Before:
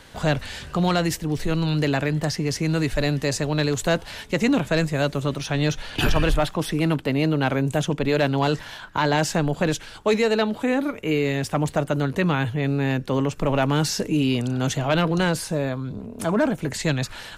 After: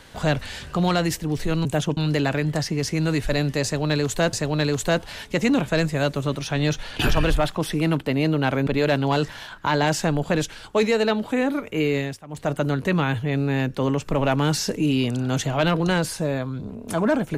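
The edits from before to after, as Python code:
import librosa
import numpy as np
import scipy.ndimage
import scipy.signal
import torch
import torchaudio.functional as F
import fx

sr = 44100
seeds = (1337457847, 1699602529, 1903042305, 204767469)

y = fx.edit(x, sr, fx.repeat(start_s=3.32, length_s=0.69, count=2),
    fx.move(start_s=7.66, length_s=0.32, to_s=1.65),
    fx.fade_down_up(start_s=11.28, length_s=0.56, db=-19.5, fade_s=0.25), tone=tone)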